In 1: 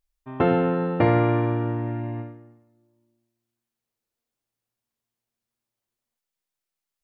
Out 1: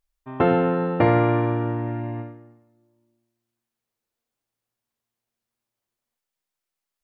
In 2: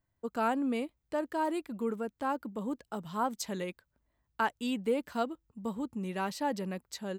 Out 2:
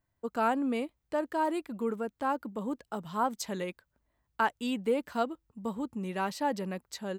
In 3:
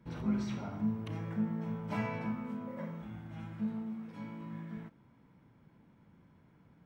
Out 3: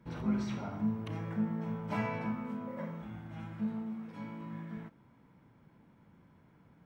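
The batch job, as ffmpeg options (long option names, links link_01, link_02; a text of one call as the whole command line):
ffmpeg -i in.wav -af "equalizer=frequency=970:width_type=o:width=2.7:gain=2.5" out.wav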